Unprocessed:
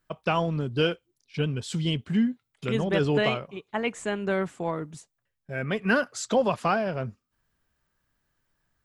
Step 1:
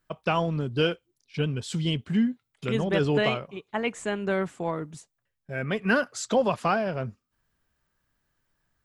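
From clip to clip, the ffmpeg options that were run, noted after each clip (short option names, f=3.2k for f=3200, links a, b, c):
-af anull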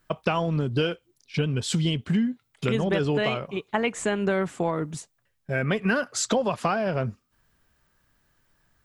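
-af "acompressor=threshold=-29dB:ratio=6,volume=8dB"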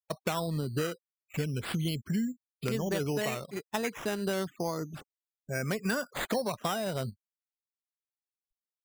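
-af "afftfilt=real='re*gte(hypot(re,im),0.0126)':imag='im*gte(hypot(re,im),0.0126)':win_size=1024:overlap=0.75,acrusher=samples=8:mix=1:aa=0.000001:lfo=1:lforange=4.8:lforate=0.32,volume=-7dB"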